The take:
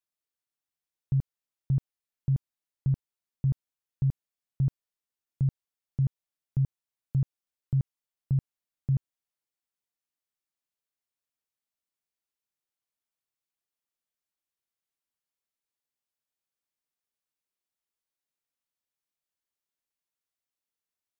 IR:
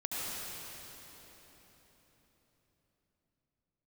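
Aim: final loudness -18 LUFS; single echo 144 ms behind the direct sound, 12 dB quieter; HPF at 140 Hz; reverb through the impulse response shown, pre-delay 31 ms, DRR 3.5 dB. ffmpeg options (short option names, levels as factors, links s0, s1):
-filter_complex "[0:a]highpass=140,aecho=1:1:144:0.251,asplit=2[s0][s1];[1:a]atrim=start_sample=2205,adelay=31[s2];[s1][s2]afir=irnorm=-1:irlink=0,volume=0.376[s3];[s0][s3]amix=inputs=2:normalize=0,volume=5.62"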